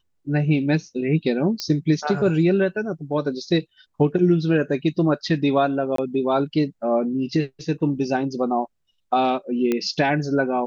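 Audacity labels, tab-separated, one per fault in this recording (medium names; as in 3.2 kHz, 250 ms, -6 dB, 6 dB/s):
1.600000	1.600000	pop -12 dBFS
5.960000	5.980000	dropout 23 ms
9.720000	9.720000	pop -10 dBFS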